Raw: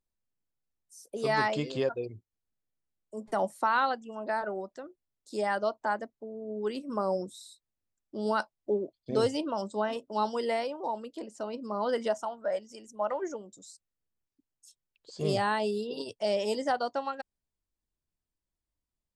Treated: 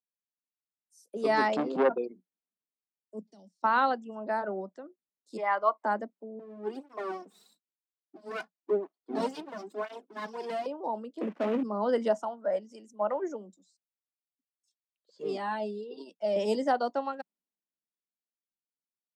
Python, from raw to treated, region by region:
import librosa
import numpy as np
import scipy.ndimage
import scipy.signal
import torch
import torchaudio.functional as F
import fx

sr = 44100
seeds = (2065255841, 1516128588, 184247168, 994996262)

y = fx.chain(x, sr, fx.highpass(hz=50.0, slope=24),
    fx.tilt_shelf(db=7.5, hz=1100.0),
    fx.transformer_sat(knee_hz=1000.0), at=(1.56, 1.98))
y = fx.chain(y, sr, fx.curve_eq(hz=(100.0, 540.0, 1300.0, 5200.0, 11000.0), db=(0, -15, -26, 11, -14)),
    fx.level_steps(step_db=17), at=(3.19, 3.64))
y = fx.chain(y, sr, fx.bandpass_edges(low_hz=620.0, high_hz=3000.0),
    fx.small_body(hz=(1100.0, 2100.0), ring_ms=35, db=17), at=(5.37, 5.84))
y = fx.chain(y, sr, fx.lower_of_two(delay_ms=2.8),
    fx.flanger_cancel(hz=1.0, depth_ms=3.7), at=(6.39, 10.66))
y = fx.chain(y, sr, fx.cvsd(bps=16000),
    fx.leveller(passes=3), at=(11.21, 11.63))
y = fx.chain(y, sr, fx.highpass(hz=170.0, slope=12),
    fx.air_absorb(metres=53.0),
    fx.comb_cascade(direction='falling', hz=1.6), at=(13.54, 16.36))
y = scipy.signal.sosfilt(scipy.signal.cheby1(6, 1.0, 180.0, 'highpass', fs=sr, output='sos'), y)
y = fx.tilt_eq(y, sr, slope=-2.0)
y = fx.band_widen(y, sr, depth_pct=40)